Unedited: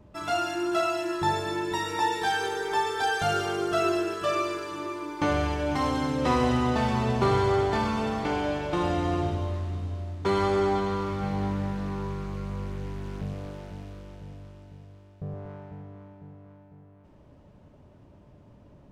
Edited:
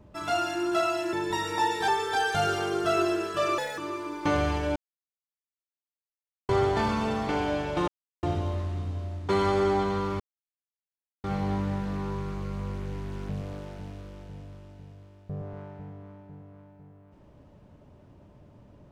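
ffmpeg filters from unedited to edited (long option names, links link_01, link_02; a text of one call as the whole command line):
ffmpeg -i in.wav -filter_complex "[0:a]asplit=10[link_01][link_02][link_03][link_04][link_05][link_06][link_07][link_08][link_09][link_10];[link_01]atrim=end=1.132[link_11];[link_02]atrim=start=1.538:end=2.292[link_12];[link_03]atrim=start=2.748:end=4.454[link_13];[link_04]atrim=start=4.45:end=4.74,asetpts=PTS-STARTPTS,asetrate=64386,aresample=44100[link_14];[link_05]atrim=start=4.736:end=5.72,asetpts=PTS-STARTPTS,afade=type=out:start_time=0.98:duration=0.004:curve=hsin[link_15];[link_06]atrim=start=5.72:end=7.45,asetpts=PTS-STARTPTS,volume=0[link_16];[link_07]atrim=start=7.45:end=8.84,asetpts=PTS-STARTPTS,afade=type=in:duration=0.004:curve=hsin,afade=type=out:start_time=1.386:duration=0.004:curve=hsin[link_17];[link_08]atrim=start=8.84:end=9.19,asetpts=PTS-STARTPTS,volume=0[link_18];[link_09]atrim=start=9.19:end=11.16,asetpts=PTS-STARTPTS,afade=type=in:duration=0.004:curve=hsin,afade=type=out:start_time=1.966:duration=0.004:curve=hsin,apad=pad_dur=1.04[link_19];[link_10]atrim=start=11.16,asetpts=PTS-STARTPTS,afade=type=in:duration=0.004:curve=hsin[link_20];[link_11][link_12]acrossfade=duration=0.004:curve1=hsin:curve2=hsin[link_21];[link_21][link_13]acrossfade=duration=0.004:curve1=hsin:curve2=hsin[link_22];[link_22][link_14]acrossfade=duration=0.004:curve1=hsin:curve2=hsin[link_23];[link_15][link_16][link_17][link_18][link_19][link_20]concat=n=6:v=0:a=1[link_24];[link_23][link_24]acrossfade=duration=0.004:curve1=hsin:curve2=hsin" out.wav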